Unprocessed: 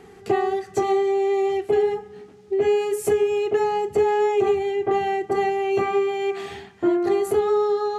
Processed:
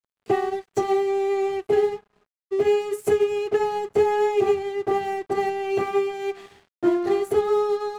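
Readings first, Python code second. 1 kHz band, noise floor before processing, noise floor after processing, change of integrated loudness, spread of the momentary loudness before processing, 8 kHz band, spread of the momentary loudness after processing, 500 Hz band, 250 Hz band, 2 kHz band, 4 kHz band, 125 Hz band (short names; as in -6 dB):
-2.0 dB, -47 dBFS, under -85 dBFS, -1.5 dB, 5 LU, n/a, 6 LU, -1.5 dB, -1.5 dB, -1.5 dB, -1.5 dB, -1.0 dB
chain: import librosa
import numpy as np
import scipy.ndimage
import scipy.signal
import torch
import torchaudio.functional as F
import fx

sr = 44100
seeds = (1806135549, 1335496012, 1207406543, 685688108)

y = np.sign(x) * np.maximum(np.abs(x) - 10.0 ** (-39.0 / 20.0), 0.0)
y = fx.upward_expand(y, sr, threshold_db=-40.0, expansion=1.5)
y = y * 10.0 ** (1.5 / 20.0)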